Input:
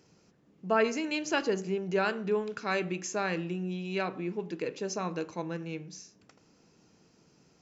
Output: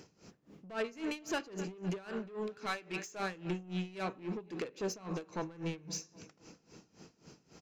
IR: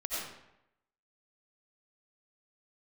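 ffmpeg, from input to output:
-filter_complex "[0:a]asettb=1/sr,asplit=3[link_01][link_02][link_03];[link_01]atrim=end=2.664[link_04];[link_02]atrim=start=2.66:end=3.2,asetpts=PTS-STARTPTS,afade=type=in:duration=0.004:curve=qsin,afade=type=out:start_time=0.536:duration=0.004:curve=qsin,lowshelf=frequency=460:gain=-11[link_05];[link_03]atrim=start=3.196[link_06];[link_04][link_05]acrossfade=duration=0.004:curve1=hsin:curve2=qsin[link_07];[link_07][link_06]acrossfade=duration=0.004:curve1=qsin:curve2=hsin,aecho=1:1:253|506|759|1012:0.0794|0.0437|0.024|0.0132,acompressor=threshold=-36dB:ratio=6,asoftclip=type=tanh:threshold=-38dB,aeval=exprs='val(0)*pow(10,-20*(0.5-0.5*cos(2*PI*3.7*n/s))/20)':channel_layout=same,volume=9.5dB"

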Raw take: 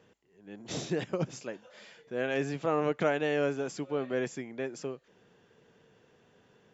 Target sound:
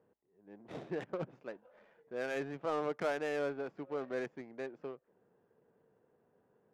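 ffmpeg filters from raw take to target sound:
ffmpeg -i in.wav -filter_complex "[0:a]asplit=2[link_01][link_02];[link_02]highpass=frequency=720:poles=1,volume=12dB,asoftclip=type=tanh:threshold=-13.5dB[link_03];[link_01][link_03]amix=inputs=2:normalize=0,lowpass=frequency=1900:poles=1,volume=-6dB,adynamicsmooth=sensitivity=4.5:basefreq=850,volume=-8dB" out.wav

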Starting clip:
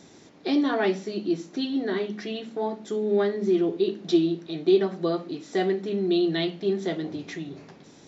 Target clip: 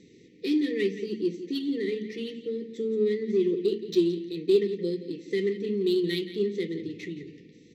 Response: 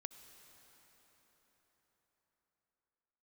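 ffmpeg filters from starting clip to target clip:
-filter_complex "[0:a]afftfilt=real='re*(1-between(b*sr/4096,500,1700))':imag='im*(1-between(b*sr/4096,500,1700))':win_size=4096:overlap=0.75,asetrate=45938,aresample=44100,asplit=2[link_01][link_02];[link_02]aecho=0:1:172|344|516:0.251|0.0628|0.0157[link_03];[link_01][link_03]amix=inputs=2:normalize=0,adynamicsmooth=sensitivity=5.5:basefreq=4100,volume=-2dB"

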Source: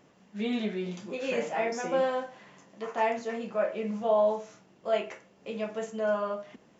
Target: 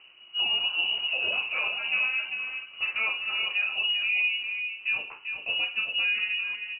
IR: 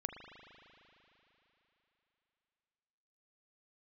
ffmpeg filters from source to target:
-af "equalizer=frequency=1200:width_type=o:width=1.2:gain=-10.5,alimiter=level_in=4.5dB:limit=-24dB:level=0:latency=1:release=466,volume=-4.5dB,aecho=1:1:394:0.473,lowpass=frequency=2600:width_type=q:width=0.5098,lowpass=frequency=2600:width_type=q:width=0.6013,lowpass=frequency=2600:width_type=q:width=0.9,lowpass=frequency=2600:width_type=q:width=2.563,afreqshift=-3100,volume=9dB"

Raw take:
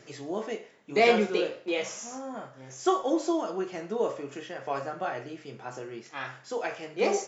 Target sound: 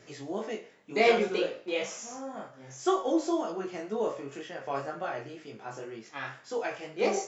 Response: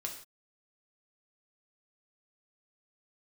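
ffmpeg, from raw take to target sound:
-af "flanger=delay=18:depth=4.1:speed=2,volume=1.5dB"

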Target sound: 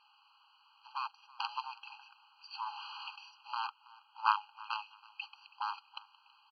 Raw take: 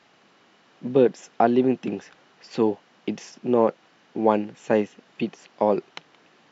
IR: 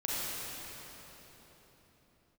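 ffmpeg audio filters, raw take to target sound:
-filter_complex "[0:a]asettb=1/sr,asplit=3[link_01][link_02][link_03];[link_01]atrim=end=2.664[link_04];[link_02]atrim=start=2.66:end=3.16,asetpts=PTS-STARTPTS,afade=type=in:duration=0.004:curve=qsin,afade=type=out:start_time=0.496:duration=0.004:curve=qsin,aeval=exprs='val(0)+0.5*0.0237*sgn(val(0))':channel_layout=same[link_05];[link_03]atrim=start=3.156[link_06];[link_04][link_05]acrossfade=duration=0.004:curve1=hsin:curve2=qsin[link_07];[link_07][link_06]acrossfade=duration=0.004:curve1=qsin:curve2=hsin,acrusher=bits=4:mode=log:mix=0:aa=0.000001,asettb=1/sr,asplit=3[link_08][link_09][link_10];[link_08]atrim=end=3.674[link_11];[link_09]atrim=start=3.67:end=4.71,asetpts=PTS-STARTPTS,afade=type=in:duration=0.004:curve=qsin,afade=type=out:start_time=1.036:duration=0.004:curve=qsin,bass=frequency=250:gain=15,treble=frequency=4000:gain=-7[link_12];[link_10]atrim=start=4.706[link_13];[link_11][link_12]acrossfade=duration=0.004:curve1=hsin:curve2=qsin[link_14];[link_14][link_13]acrossfade=duration=0.004:curve1=qsin:curve2=hsin,aeval=exprs='1.78*(cos(1*acos(clip(val(0)/1.78,-1,1)))-cos(1*PI/2))+0.126*(cos(5*acos(clip(val(0)/1.78,-1,1)))-cos(5*PI/2))+0.501*(cos(7*acos(clip(val(0)/1.78,-1,1)))-cos(7*PI/2))':channel_layout=same,asettb=1/sr,asplit=3[link_15][link_16][link_17];[link_15]atrim=end=0.864[link_18];[link_16]atrim=start=0.86:end=1.49,asetpts=PTS-STARTPTS,afade=type=in:duration=0.004:curve=qsin,afade=type=out:start_time=0.626:duration=0.004:curve=qsin,aeval=exprs='max(val(0),0)':channel_layout=same[link_19];[link_17]atrim=start=1.486[link_20];[link_18][link_19]acrossfade=duration=0.004:curve1=hsin:curve2=qsin[link_21];[link_21][link_20]acrossfade=duration=0.004:curve1=qsin:curve2=hsin,equalizer=frequency=1600:width_type=o:width=0.55:gain=-10,asplit=2[link_22][link_23];[link_23]aecho=0:1:326|652:0.0841|0.0194[link_24];[link_22][link_24]amix=inputs=2:normalize=0,aresample=11025,aresample=44100,afftfilt=real='re*eq(mod(floor(b*sr/1024/810),2),1)':imag='im*eq(mod(floor(b*sr/1024/810),2),1)':win_size=1024:overlap=0.75,volume=2dB"

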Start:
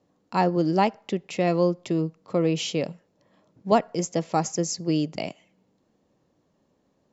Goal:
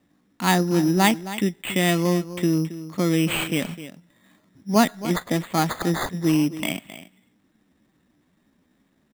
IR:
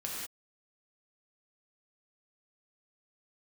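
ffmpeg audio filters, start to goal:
-filter_complex "[0:a]equalizer=frequency=125:width_type=o:width=1:gain=-6,equalizer=frequency=250:width_type=o:width=1:gain=4,equalizer=frequency=500:width_type=o:width=1:gain=-12,equalizer=frequency=1000:width_type=o:width=1:gain=-5,equalizer=frequency=2000:width_type=o:width=1:gain=9,equalizer=frequency=4000:width_type=o:width=1:gain=-8,asplit=2[link_01][link_02];[link_02]aecho=0:1:210:0.2[link_03];[link_01][link_03]amix=inputs=2:normalize=0,atempo=0.78,acrusher=samples=8:mix=1:aa=0.000001,volume=6.5dB"

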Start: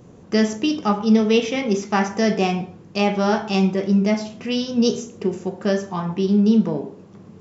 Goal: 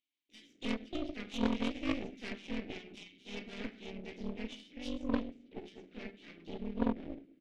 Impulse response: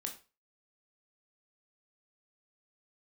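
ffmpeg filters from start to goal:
-filter_complex "[0:a]lowpass=4400,bandreject=frequency=60:width_type=h:width=6,bandreject=frequency=120:width_type=h:width=6,bandreject=frequency=180:width_type=h:width=6,bandreject=frequency=240:width_type=h:width=6,bandreject=frequency=300:width_type=h:width=6,bandreject=frequency=360:width_type=h:width=6,bandreject=frequency=420:width_type=h:width=6,acrossover=split=160|2600[link_01][link_02][link_03];[link_02]adelay=310[link_04];[link_01]adelay=400[link_05];[link_05][link_04][link_03]amix=inputs=3:normalize=0,aeval=exprs='max(val(0),0)':channel_layout=same,asplit=3[link_06][link_07][link_08];[link_06]bandpass=frequency=270:width_type=q:width=8,volume=0dB[link_09];[link_07]bandpass=frequency=2290:width_type=q:width=8,volume=-6dB[link_10];[link_08]bandpass=frequency=3010:width_type=q:width=8,volume=-9dB[link_11];[link_09][link_10][link_11]amix=inputs=3:normalize=0,flanger=delay=0.8:depth=1.5:regen=88:speed=0.74:shape=sinusoidal,asplit=2[link_12][link_13];[link_13]asetrate=52444,aresample=44100,atempo=0.840896,volume=-4dB[link_14];[link_12][link_14]amix=inputs=2:normalize=0,aeval=exprs='0.0562*(cos(1*acos(clip(val(0)/0.0562,-1,1)))-cos(1*PI/2))+0.00631*(cos(3*acos(clip(val(0)/0.0562,-1,1)))-cos(3*PI/2))+0.0224*(cos(4*acos(clip(val(0)/0.0562,-1,1)))-cos(4*PI/2))+0.02*(cos(6*acos(clip(val(0)/0.0562,-1,1)))-cos(6*PI/2))':channel_layout=same,volume=4.5dB"

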